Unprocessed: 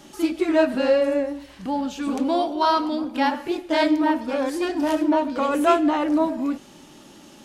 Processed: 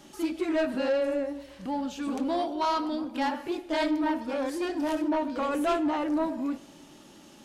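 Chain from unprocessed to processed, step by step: on a send: narrowing echo 0.118 s, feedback 75%, band-pass 430 Hz, level -23.5 dB; on the sum: soft clip -15.5 dBFS, distortion -15 dB; gain -5 dB

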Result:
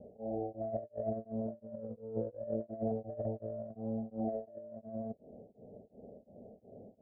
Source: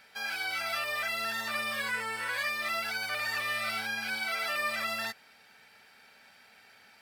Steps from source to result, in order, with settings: steep low-pass 640 Hz 72 dB/oct; negative-ratio compressor -51 dBFS, ratio -0.5; beating tremolo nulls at 2.8 Hz; gain +15.5 dB

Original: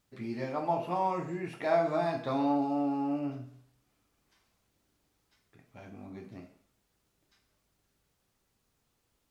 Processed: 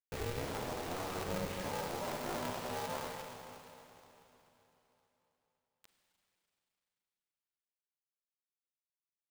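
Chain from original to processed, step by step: air absorption 160 m; compressor 20:1, threshold -42 dBFS, peak gain reduction 20.5 dB; HPF 180 Hz 12 dB/oct; limiter -42.5 dBFS, peak gain reduction 9.5 dB; feedback echo 0.242 s, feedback 39%, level -16 dB; formant-preserving pitch shift -12 st; high-pass sweep 240 Hz -> 3000 Hz, 1.47–4.83; bit-crush 9-bit; Schroeder reverb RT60 3.6 s, combs from 33 ms, DRR 4 dB; polarity switched at an audio rate 180 Hz; gain +8 dB

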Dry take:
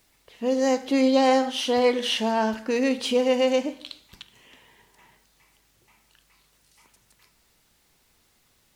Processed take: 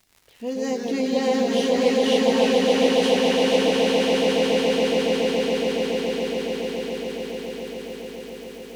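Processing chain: echoes that change speed 82 ms, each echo -2 st, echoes 3, each echo -6 dB; LFO notch sine 7.1 Hz 600–1500 Hz; crackle 150/s -36 dBFS; swelling echo 0.14 s, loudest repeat 8, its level -5 dB; gain -3.5 dB

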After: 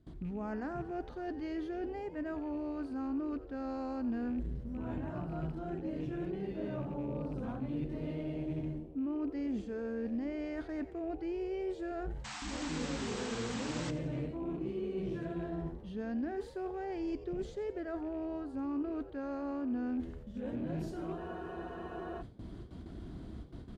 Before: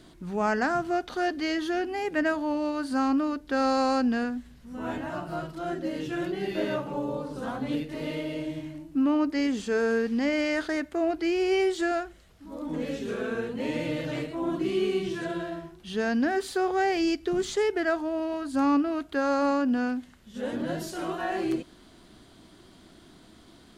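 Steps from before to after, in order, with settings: rattling part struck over -37 dBFS, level -35 dBFS; gate with hold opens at -43 dBFS; HPF 47 Hz 12 dB/oct; low shelf 110 Hz +8 dB; reverse; compressor 5:1, threshold -40 dBFS, peak gain reduction 19 dB; reverse; painted sound noise, 12.24–13.91, 700–8300 Hz -37 dBFS; tilt -3.5 dB/oct; on a send: frequency-shifting echo 88 ms, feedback 51%, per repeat +80 Hz, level -15.5 dB; on the sum: spectral freeze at 21.2, 1.00 s; core saturation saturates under 140 Hz; gain -2 dB

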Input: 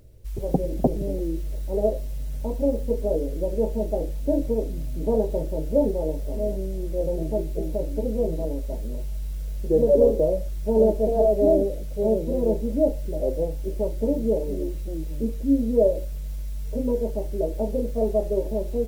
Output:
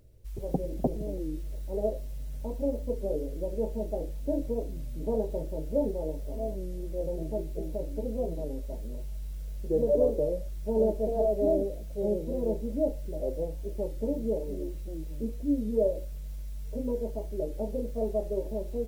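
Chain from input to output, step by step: record warp 33 1/3 rpm, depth 100 cents; gain -7 dB

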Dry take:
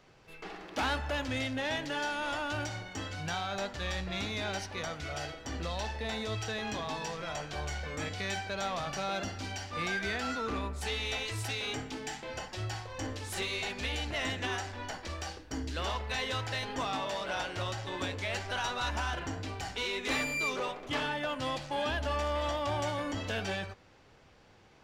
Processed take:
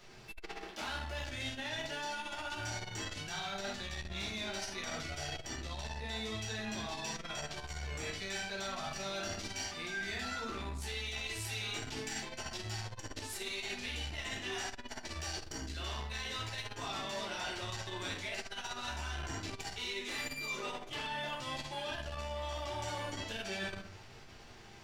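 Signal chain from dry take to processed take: high shelf 2500 Hz +10 dB; flutter echo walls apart 12 m, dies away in 0.36 s; reverb RT60 0.45 s, pre-delay 6 ms, DRR -4.5 dB; reverse; compressor 12:1, threshold -33 dBFS, peak gain reduction 15.5 dB; reverse; notch 510 Hz, Q 12; core saturation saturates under 150 Hz; gain -2.5 dB

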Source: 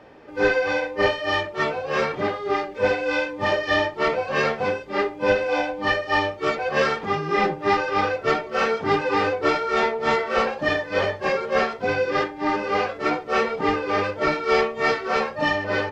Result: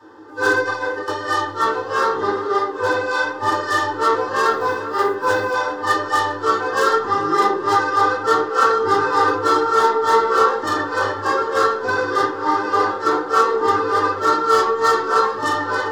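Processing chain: tracing distortion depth 0.029 ms; notches 50/100/150/200/250/300/350/400/450/500 Hz; 0.61–1.08 negative-ratio compressor -27 dBFS, ratio -0.5; wavefolder -14 dBFS; fixed phaser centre 630 Hz, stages 6; 4.45–5.54 short-mantissa float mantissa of 4-bit; tape echo 0.396 s, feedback 82%, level -14 dB, low-pass 3300 Hz; reverb RT60 0.40 s, pre-delay 3 ms, DRR -7 dB; gain +1.5 dB

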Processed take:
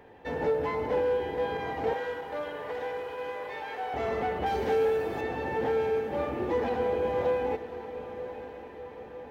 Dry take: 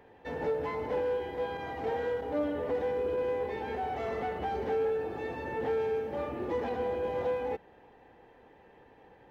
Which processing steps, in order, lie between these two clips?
1.93–3.94 HPF 870 Hz 12 dB/oct; 4.46–5.21 high shelf 3400 Hz +10.5 dB; diffused feedback echo 1.04 s, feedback 55%, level -12 dB; gain +4 dB

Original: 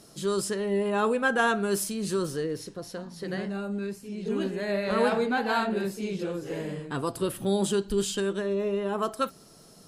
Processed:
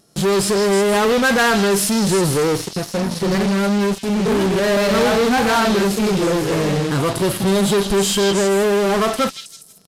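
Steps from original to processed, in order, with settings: harmonic-percussive split percussive -12 dB; in parallel at -4 dB: fuzz box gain 45 dB, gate -47 dBFS; on the sum: downsampling 32000 Hz; delay with a stepping band-pass 0.16 s, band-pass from 4200 Hz, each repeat 0.7 oct, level -2 dB; wow and flutter 25 cents

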